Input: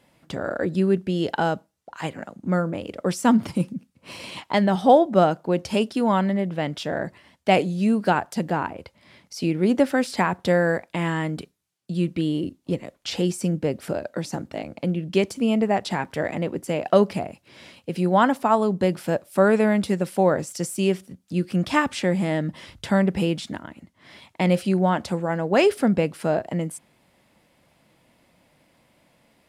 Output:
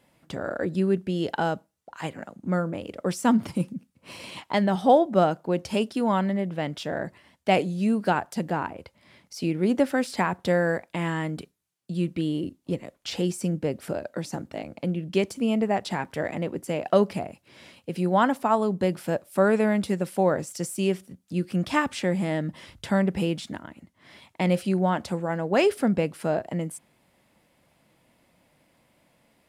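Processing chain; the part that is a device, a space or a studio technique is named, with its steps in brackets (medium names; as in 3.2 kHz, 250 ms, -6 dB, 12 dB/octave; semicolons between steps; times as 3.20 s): exciter from parts (in parallel at -10 dB: high-pass 4.1 kHz 6 dB/octave + saturation -37.5 dBFS, distortion -5 dB + high-pass 4.9 kHz); on the sum: trim -3 dB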